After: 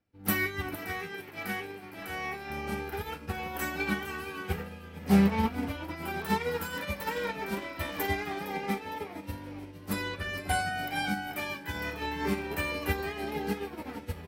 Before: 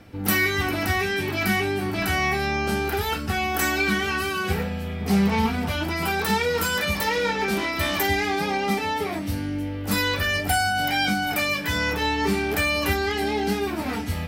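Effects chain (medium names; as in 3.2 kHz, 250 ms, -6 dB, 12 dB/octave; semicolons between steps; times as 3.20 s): 0.77–2.50 s: bass shelf 200 Hz -9.5 dB; 9.93–10.73 s: low-pass 12 kHz 24 dB/octave; frequency-shifting echo 460 ms, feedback 36%, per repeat +82 Hz, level -9 dB; dynamic bell 5.5 kHz, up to -6 dB, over -42 dBFS, Q 0.76; upward expansion 2.5:1, over -39 dBFS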